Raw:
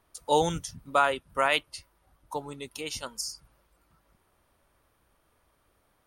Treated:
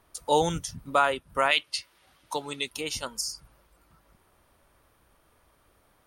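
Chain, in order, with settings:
0:01.51–0:02.71: meter weighting curve D
in parallel at −1.5 dB: downward compressor, threshold −36 dBFS, peak gain reduction 23.5 dB
on the sum: boost into a limiter +7.5 dB
level −8 dB

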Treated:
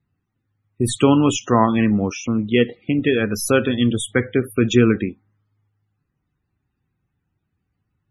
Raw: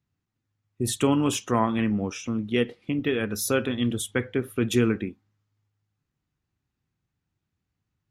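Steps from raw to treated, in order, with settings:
stylus tracing distortion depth 0.02 ms
spectral peaks only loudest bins 64
level +7.5 dB

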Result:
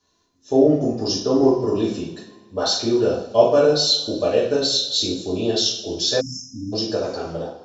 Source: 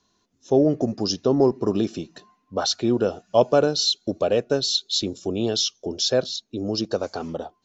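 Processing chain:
coupled-rooms reverb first 0.54 s, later 2 s, from −19 dB, DRR −7.5 dB
time-frequency box erased 0:06.20–0:06.73, 320–5,000 Hz
level −5.5 dB

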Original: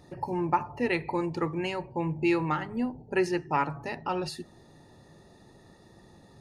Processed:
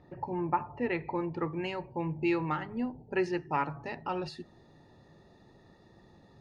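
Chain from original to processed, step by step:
low-pass filter 2,400 Hz 12 dB per octave, from 0:01.53 4,500 Hz
level −3.5 dB

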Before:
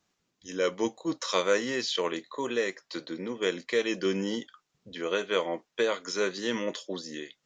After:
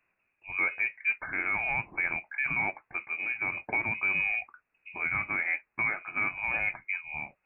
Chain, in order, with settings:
brickwall limiter −21 dBFS, peak gain reduction 10 dB
voice inversion scrambler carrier 2,700 Hz
level +2 dB

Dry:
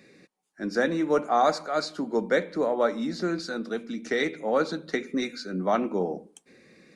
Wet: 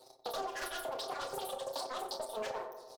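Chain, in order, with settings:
time-frequency cells dropped at random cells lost 29%
high-pass filter 120 Hz 24 dB per octave
soft clipping −13.5 dBFS, distortion −22 dB
leveller curve on the samples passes 2
flat-topped bell 770 Hz −10 dB
double-tracking delay 18 ms −3.5 dB
wrong playback speed 33 rpm record played at 78 rpm
downward compressor 6 to 1, threshold −36 dBFS, peak gain reduction 18 dB
feedback echo with a low-pass in the loop 91 ms, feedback 69%, low-pass 1,500 Hz, level −7 dB
convolution reverb RT60 0.15 s, pre-delay 23 ms, DRR 4.5 dB
highs frequency-modulated by the lows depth 0.26 ms
level −3 dB

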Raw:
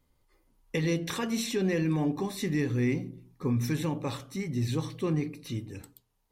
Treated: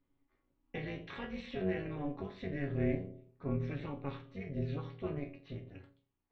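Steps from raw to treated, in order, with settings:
low-pass filter 3,100 Hz 24 dB per octave
parametric band 580 Hz −4 dB 0.75 octaves
resonators tuned to a chord F#2 sus4, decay 0.26 s
amplitude modulation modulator 280 Hz, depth 75%
level +7 dB

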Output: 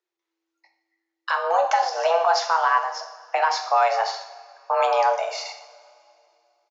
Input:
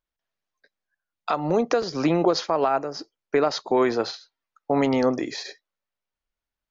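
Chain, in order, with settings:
frequency shifter +330 Hz
coupled-rooms reverb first 0.63 s, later 2.5 s, from −17 dB, DRR 3 dB
downsampling to 16,000 Hz

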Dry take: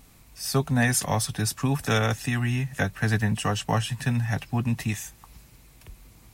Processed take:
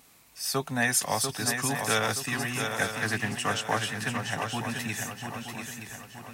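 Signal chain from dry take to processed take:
high-pass filter 490 Hz 6 dB per octave
feedback echo with a long and a short gap by turns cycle 923 ms, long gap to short 3 to 1, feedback 42%, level −6 dB
0:03.02–0:04.50: highs frequency-modulated by the lows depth 0.18 ms

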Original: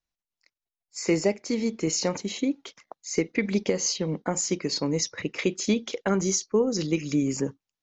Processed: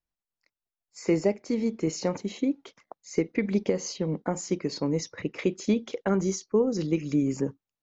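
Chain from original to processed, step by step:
high-shelf EQ 2,000 Hz −10.5 dB

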